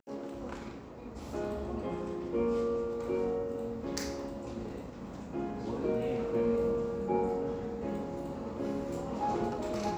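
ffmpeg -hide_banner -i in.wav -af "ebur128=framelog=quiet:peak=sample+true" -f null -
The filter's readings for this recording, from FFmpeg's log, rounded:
Integrated loudness:
  I:         -35.0 LUFS
  Threshold: -45.1 LUFS
Loudness range:
  LRA:         3.0 LU
  Threshold: -54.7 LUFS
  LRA low:   -36.4 LUFS
  LRA high:  -33.4 LUFS
Sample peak:
  Peak:      -14.9 dBFS
True peak:
  Peak:      -14.9 dBFS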